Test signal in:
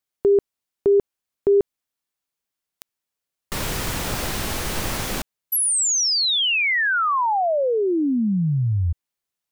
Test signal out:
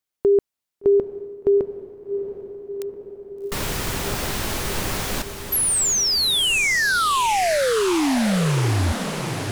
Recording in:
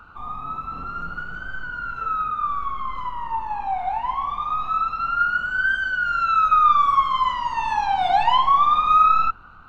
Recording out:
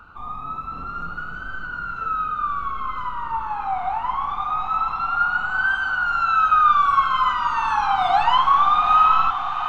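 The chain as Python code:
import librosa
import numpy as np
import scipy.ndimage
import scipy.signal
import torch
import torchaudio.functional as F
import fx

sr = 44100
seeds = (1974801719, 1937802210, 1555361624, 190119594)

y = fx.echo_diffused(x, sr, ms=766, feedback_pct=73, wet_db=-9.5)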